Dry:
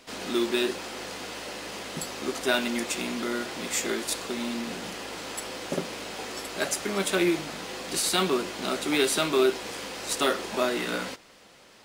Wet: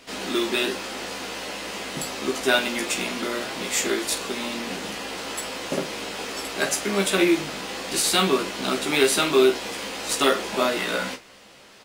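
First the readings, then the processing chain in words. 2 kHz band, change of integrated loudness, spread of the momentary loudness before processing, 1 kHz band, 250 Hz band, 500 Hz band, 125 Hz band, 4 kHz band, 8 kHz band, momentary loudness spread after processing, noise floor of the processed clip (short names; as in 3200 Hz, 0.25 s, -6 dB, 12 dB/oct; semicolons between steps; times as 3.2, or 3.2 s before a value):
+5.0 dB, +4.5 dB, 12 LU, +4.5 dB, +3.0 dB, +4.0 dB, +3.5 dB, +5.0 dB, +4.0 dB, 12 LU, -49 dBFS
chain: bell 2700 Hz +2 dB; early reflections 15 ms -4 dB, 47 ms -12 dB; gain +2.5 dB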